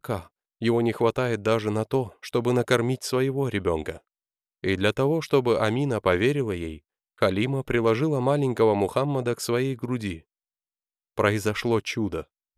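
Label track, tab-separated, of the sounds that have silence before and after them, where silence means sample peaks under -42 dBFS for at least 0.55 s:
4.640000	10.190000	sound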